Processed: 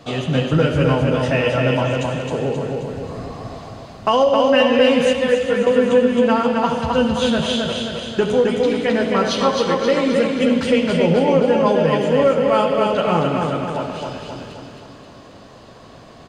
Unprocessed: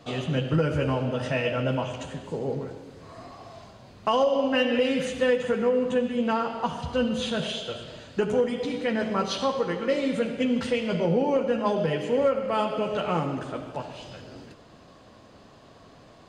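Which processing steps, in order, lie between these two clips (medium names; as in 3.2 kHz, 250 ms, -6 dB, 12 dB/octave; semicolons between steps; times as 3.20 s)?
2.78–3.55 s: bass shelf 220 Hz +11 dB; on a send: feedback delay 265 ms, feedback 52%, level -3.5 dB; 5.13–5.67 s: on the sum: three-phase chorus; trim +7 dB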